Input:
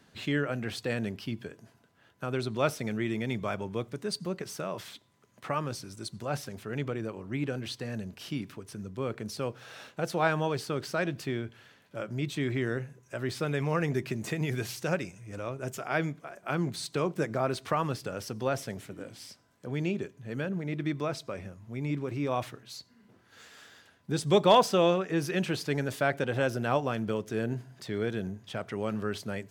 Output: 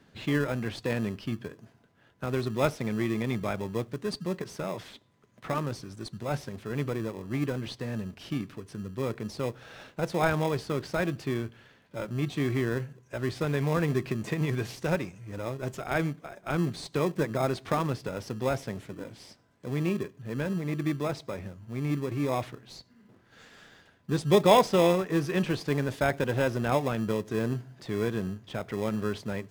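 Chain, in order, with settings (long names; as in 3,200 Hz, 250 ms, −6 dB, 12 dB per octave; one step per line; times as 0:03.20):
high-shelf EQ 6,500 Hz −10.5 dB
in parallel at −8 dB: decimation without filtering 30×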